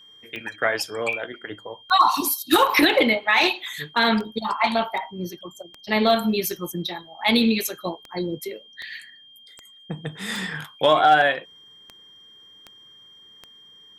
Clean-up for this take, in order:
clipped peaks rebuilt −7.5 dBFS
click removal
notch filter 3,200 Hz, Q 30

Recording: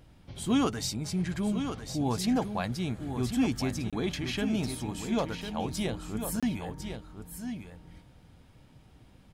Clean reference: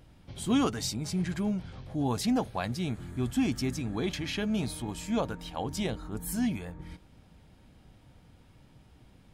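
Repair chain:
repair the gap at 0:03.90/0:06.40, 26 ms
echo removal 1,051 ms −8 dB

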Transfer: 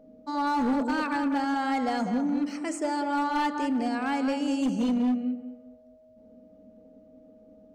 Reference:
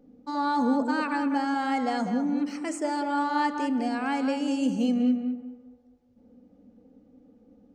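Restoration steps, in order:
clipped peaks rebuilt −21.5 dBFS
notch filter 630 Hz, Q 30

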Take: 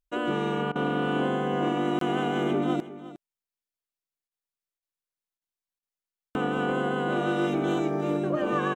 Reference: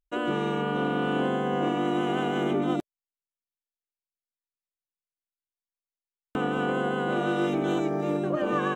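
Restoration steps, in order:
repair the gap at 0:01.99, 23 ms
repair the gap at 0:00.72/0:04.28/0:04.79/0:05.38/0:05.79/0:06.30, 34 ms
echo removal 359 ms −15.5 dB

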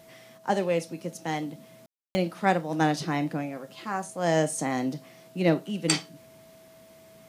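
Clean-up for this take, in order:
notch filter 650 Hz, Q 30
ambience match 0:01.86–0:02.15

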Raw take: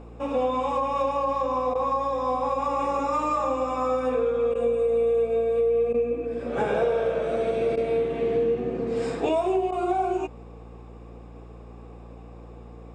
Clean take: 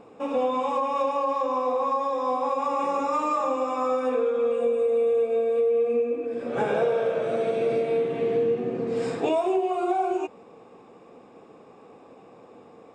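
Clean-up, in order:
hum removal 57.9 Hz, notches 6
repair the gap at 0:01.74/0:04.54/0:05.93/0:07.76/0:09.71, 11 ms

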